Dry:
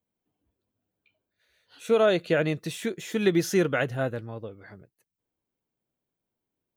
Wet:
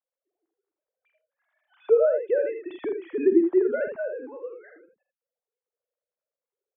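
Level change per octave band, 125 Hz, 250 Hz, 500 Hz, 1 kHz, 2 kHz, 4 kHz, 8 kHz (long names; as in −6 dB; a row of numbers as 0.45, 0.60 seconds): below −30 dB, +1.5 dB, +3.0 dB, −10.0 dB, −8.0 dB, below −20 dB, below −40 dB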